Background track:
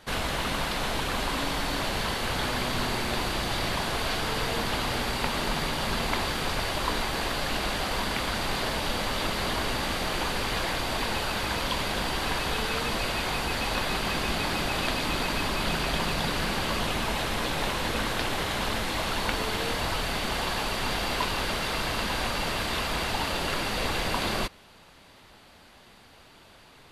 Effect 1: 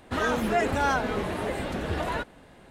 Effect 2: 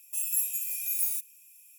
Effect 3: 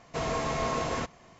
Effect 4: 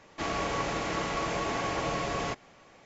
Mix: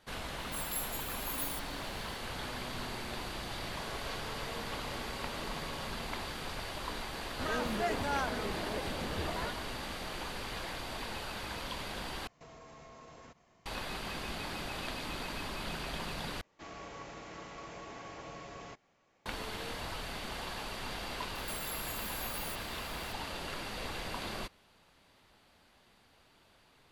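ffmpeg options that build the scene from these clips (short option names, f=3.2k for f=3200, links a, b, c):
-filter_complex "[2:a]asplit=2[a][b];[4:a]asplit=2[c][d];[0:a]volume=-11.5dB[e];[c]aecho=1:1:2:0.65[f];[3:a]acompressor=threshold=-38dB:ratio=6:attack=3.2:release=140:knee=1:detection=peak[g];[b]acompressor=threshold=-40dB:ratio=6:attack=3.2:release=140:knee=1:detection=peak[h];[e]asplit=3[i][j][k];[i]atrim=end=12.274[l];[g]atrim=end=1.39,asetpts=PTS-STARTPTS,volume=-12dB[m];[j]atrim=start=13.656:end=16.414[n];[d]atrim=end=2.85,asetpts=PTS-STARTPTS,volume=-15.5dB[o];[k]atrim=start=19.256[p];[a]atrim=end=1.78,asetpts=PTS-STARTPTS,volume=-10.5dB,afade=t=in:d=0.004:c=hsin,afade=t=out:st=1.776:d=0.004:c=hsin,adelay=390[q];[f]atrim=end=2.85,asetpts=PTS-STARTPTS,volume=-18dB,afade=t=in:d=0.004:c=hsin,afade=t=out:st=2.846:d=0.004:c=hsin,adelay=3550[r];[1:a]atrim=end=2.7,asetpts=PTS-STARTPTS,volume=-9dB,afade=t=in:d=0.004:c=hsin,afade=t=out:st=2.696:d=0.004:c=hsin,adelay=7280[s];[h]atrim=end=1.78,asetpts=PTS-STARTPTS,volume=-0.5dB,afade=t=in:d=0.004:c=hsin,afade=t=out:st=1.776:d=0.004:c=hsin,adelay=21350[t];[l][m]acrossfade=d=0.004:c1=hsin:c2=hsin[u];[u][n]acrossfade=d=0.004:c1=hsin:c2=hsin[v];[v][o]acrossfade=d=0.004:c1=hsin:c2=hsin[w];[w][p]acrossfade=d=0.004:c1=hsin:c2=hsin[x];[x][q][r][s][t]amix=inputs=5:normalize=0"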